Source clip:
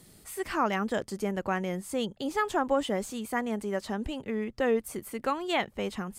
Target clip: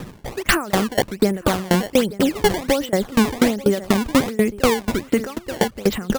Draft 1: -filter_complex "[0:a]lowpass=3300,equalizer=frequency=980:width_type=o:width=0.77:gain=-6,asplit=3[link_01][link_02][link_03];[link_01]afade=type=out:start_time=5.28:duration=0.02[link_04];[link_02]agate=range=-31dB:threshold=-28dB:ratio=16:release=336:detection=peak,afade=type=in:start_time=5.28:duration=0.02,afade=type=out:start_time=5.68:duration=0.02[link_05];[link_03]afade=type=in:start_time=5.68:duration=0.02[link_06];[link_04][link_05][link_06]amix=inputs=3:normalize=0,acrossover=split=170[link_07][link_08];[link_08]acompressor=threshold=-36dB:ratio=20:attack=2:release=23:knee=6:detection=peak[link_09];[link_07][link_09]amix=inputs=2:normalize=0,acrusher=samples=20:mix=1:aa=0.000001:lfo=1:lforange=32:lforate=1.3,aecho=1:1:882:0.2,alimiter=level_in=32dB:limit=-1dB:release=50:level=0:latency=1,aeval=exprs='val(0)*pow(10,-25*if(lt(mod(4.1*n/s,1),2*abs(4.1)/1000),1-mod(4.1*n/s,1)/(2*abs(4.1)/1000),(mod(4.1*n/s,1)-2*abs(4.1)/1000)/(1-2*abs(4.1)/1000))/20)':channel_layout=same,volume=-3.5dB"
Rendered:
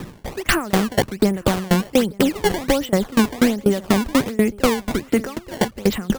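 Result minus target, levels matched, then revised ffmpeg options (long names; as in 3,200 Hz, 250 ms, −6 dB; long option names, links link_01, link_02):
downward compressor: peak gain reduction +14.5 dB
-filter_complex "[0:a]lowpass=3300,equalizer=frequency=980:width_type=o:width=0.77:gain=-6,asplit=3[link_01][link_02][link_03];[link_01]afade=type=out:start_time=5.28:duration=0.02[link_04];[link_02]agate=range=-31dB:threshold=-28dB:ratio=16:release=336:detection=peak,afade=type=in:start_time=5.28:duration=0.02,afade=type=out:start_time=5.68:duration=0.02[link_05];[link_03]afade=type=in:start_time=5.68:duration=0.02[link_06];[link_04][link_05][link_06]amix=inputs=3:normalize=0,acrusher=samples=20:mix=1:aa=0.000001:lfo=1:lforange=32:lforate=1.3,aecho=1:1:882:0.2,alimiter=level_in=32dB:limit=-1dB:release=50:level=0:latency=1,aeval=exprs='val(0)*pow(10,-25*if(lt(mod(4.1*n/s,1),2*abs(4.1)/1000),1-mod(4.1*n/s,1)/(2*abs(4.1)/1000),(mod(4.1*n/s,1)-2*abs(4.1)/1000)/(1-2*abs(4.1)/1000))/20)':channel_layout=same,volume=-3.5dB"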